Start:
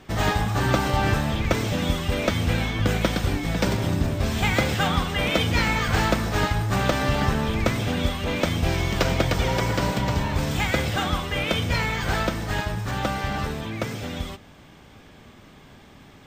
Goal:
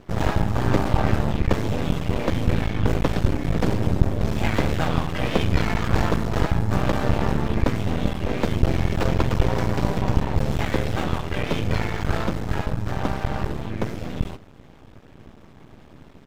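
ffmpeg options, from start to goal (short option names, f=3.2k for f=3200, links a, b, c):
-filter_complex "[0:a]asplit=2[a][b];[b]asetrate=35002,aresample=44100,atempo=1.25992,volume=-4dB[c];[a][c]amix=inputs=2:normalize=0,tiltshelf=f=940:g=5.5,aeval=exprs='max(val(0),0)':c=same"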